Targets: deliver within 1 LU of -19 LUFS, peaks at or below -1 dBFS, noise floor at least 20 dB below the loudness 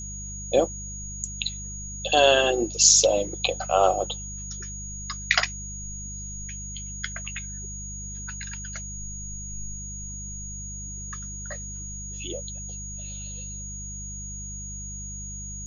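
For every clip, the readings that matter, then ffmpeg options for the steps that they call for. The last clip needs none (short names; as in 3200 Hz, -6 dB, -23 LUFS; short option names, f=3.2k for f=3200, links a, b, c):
hum 50 Hz; harmonics up to 200 Hz; hum level -36 dBFS; steady tone 6700 Hz; tone level -36 dBFS; loudness -27.0 LUFS; peak -2.5 dBFS; loudness target -19.0 LUFS
-> -af "bandreject=f=50:t=h:w=4,bandreject=f=100:t=h:w=4,bandreject=f=150:t=h:w=4,bandreject=f=200:t=h:w=4"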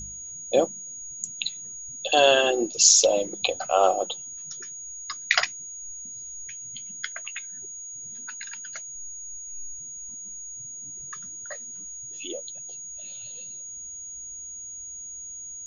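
hum none; steady tone 6700 Hz; tone level -36 dBFS
-> -af "bandreject=f=6.7k:w=30"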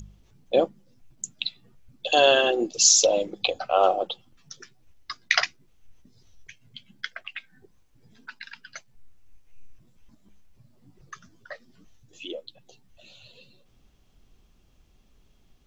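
steady tone none; loudness -22.5 LUFS; peak -2.5 dBFS; loudness target -19.0 LUFS
-> -af "volume=3.5dB,alimiter=limit=-1dB:level=0:latency=1"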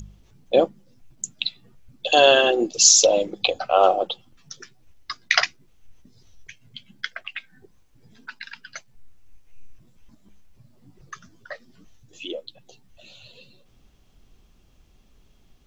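loudness -19.0 LUFS; peak -1.0 dBFS; noise floor -57 dBFS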